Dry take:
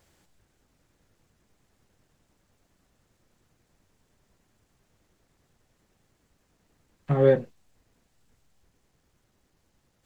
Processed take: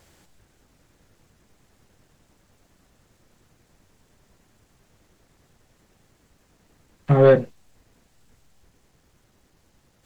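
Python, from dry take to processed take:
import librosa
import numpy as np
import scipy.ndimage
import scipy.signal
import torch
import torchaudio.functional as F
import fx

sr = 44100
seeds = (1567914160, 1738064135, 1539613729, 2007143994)

y = fx.fold_sine(x, sr, drive_db=4, ceiling_db=-6.5)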